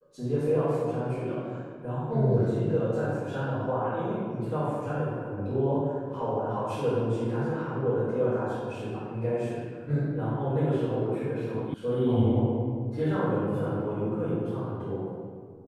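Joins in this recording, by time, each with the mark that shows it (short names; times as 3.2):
11.74 sound cut off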